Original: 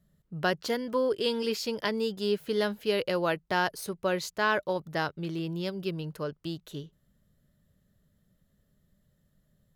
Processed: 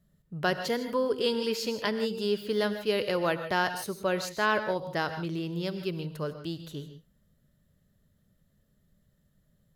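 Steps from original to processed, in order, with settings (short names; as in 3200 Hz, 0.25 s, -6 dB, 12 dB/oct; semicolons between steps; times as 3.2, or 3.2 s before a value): non-linear reverb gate 0.18 s rising, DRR 9.5 dB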